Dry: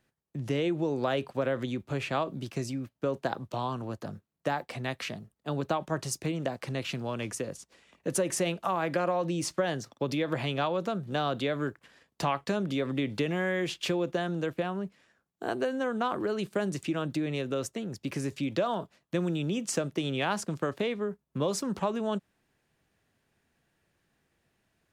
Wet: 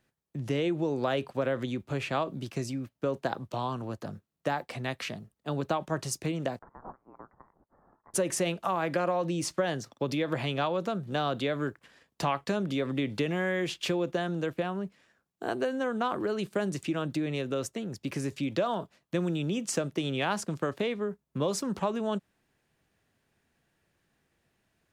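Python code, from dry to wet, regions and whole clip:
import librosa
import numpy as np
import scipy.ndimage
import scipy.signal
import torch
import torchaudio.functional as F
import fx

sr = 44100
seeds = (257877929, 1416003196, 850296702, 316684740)

y = fx.chain(x, sr, fx.steep_highpass(hz=2900.0, slope=36),
    fx.freq_invert(carrier_hz=3700),
    fx.band_squash(depth_pct=40), at=(6.59, 8.14))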